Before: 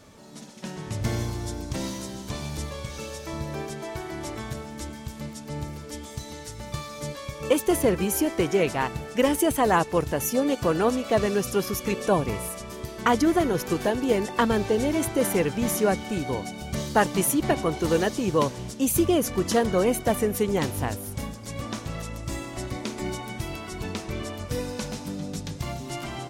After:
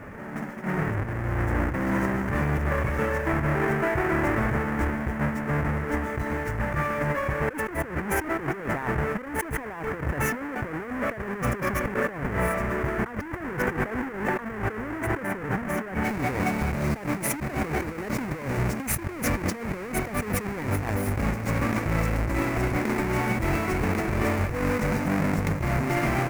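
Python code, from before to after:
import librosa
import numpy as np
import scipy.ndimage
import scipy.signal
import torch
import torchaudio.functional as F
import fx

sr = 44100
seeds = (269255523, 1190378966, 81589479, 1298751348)

y = fx.halfwave_hold(x, sr)
y = fx.high_shelf_res(y, sr, hz=2700.0, db=fx.steps((0.0, -13.0), (16.03, -6.5)), q=3.0)
y = fx.over_compress(y, sr, threshold_db=-28.0, ratio=-1.0)
y = fx.attack_slew(y, sr, db_per_s=180.0)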